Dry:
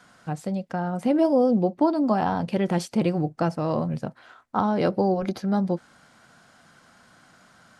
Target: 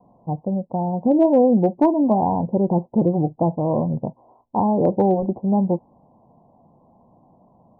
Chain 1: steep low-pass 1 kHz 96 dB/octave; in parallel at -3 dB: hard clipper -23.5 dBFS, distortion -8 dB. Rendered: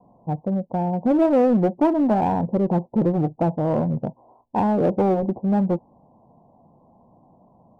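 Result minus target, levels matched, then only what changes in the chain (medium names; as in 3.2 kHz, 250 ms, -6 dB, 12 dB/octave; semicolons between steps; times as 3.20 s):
hard clipper: distortion +20 dB
change: hard clipper -13 dBFS, distortion -28 dB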